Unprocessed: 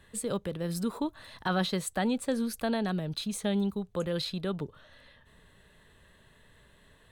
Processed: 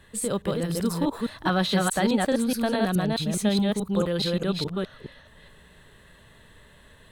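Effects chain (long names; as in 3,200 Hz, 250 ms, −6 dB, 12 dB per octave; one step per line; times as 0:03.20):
delay that plays each chunk backwards 211 ms, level −1 dB
level +4.5 dB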